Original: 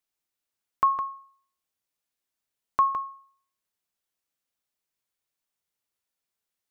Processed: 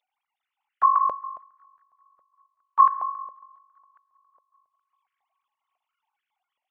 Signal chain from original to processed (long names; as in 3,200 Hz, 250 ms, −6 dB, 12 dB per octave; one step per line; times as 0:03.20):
three sine waves on the formant tracks
noise gate −59 dBFS, range −54 dB
parametric band 1,600 Hz −12.5 dB 0.33 octaves
upward compression, threshold −34 dBFS
delay with a high-pass on its return 195 ms, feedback 70%, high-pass 1,600 Hz, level −21.5 dB
on a send at −15.5 dB: convolution reverb RT60 1.0 s, pre-delay 103 ms
on the sum: high-pass on a step sequencer 7.3 Hz 560–1,600 Hz